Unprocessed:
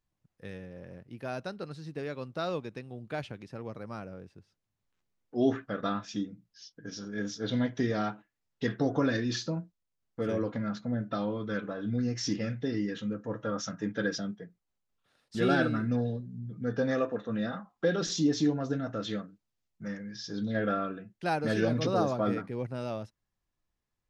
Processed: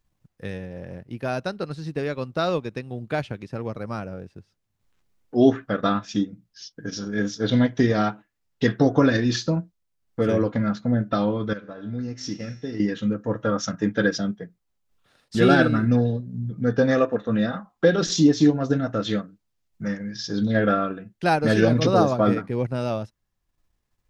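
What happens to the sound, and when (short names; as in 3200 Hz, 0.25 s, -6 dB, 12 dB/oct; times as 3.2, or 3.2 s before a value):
11.53–12.8 resonator 85 Hz, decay 1.8 s, mix 70%
whole clip: low shelf 83 Hz +5 dB; transient shaper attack +1 dB, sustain -5 dB; gain +9 dB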